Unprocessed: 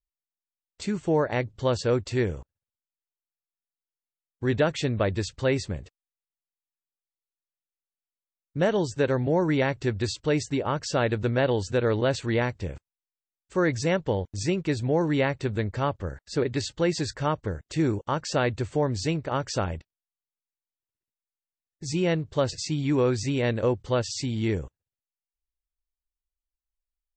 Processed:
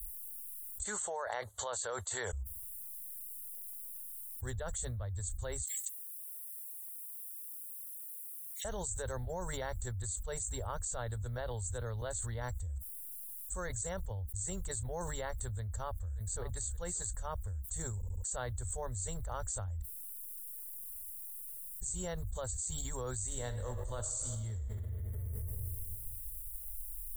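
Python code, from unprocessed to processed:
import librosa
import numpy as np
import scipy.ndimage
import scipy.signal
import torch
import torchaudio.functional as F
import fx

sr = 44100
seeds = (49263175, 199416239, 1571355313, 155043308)

y = fx.bandpass_edges(x, sr, low_hz=660.0, high_hz=4400.0, at=(0.84, 2.33))
y = fx.steep_highpass(y, sr, hz=2000.0, slope=96, at=(5.61, 8.65))
y = fx.echo_throw(y, sr, start_s=15.42, length_s=0.99, ms=580, feedback_pct=20, wet_db=-14.0)
y = fx.reverb_throw(y, sr, start_s=23.24, length_s=1.36, rt60_s=1.8, drr_db=3.5)
y = fx.edit(y, sr, fx.stutter_over(start_s=17.96, slice_s=0.07, count=4), tone=tone)
y = scipy.signal.sosfilt(scipy.signal.cheby2(4, 40, [130.0, 5600.0], 'bandstop', fs=sr, output='sos'), y)
y = fx.low_shelf(y, sr, hz=310.0, db=-10.0)
y = fx.env_flatten(y, sr, amount_pct=100)
y = y * librosa.db_to_amplitude(13.0)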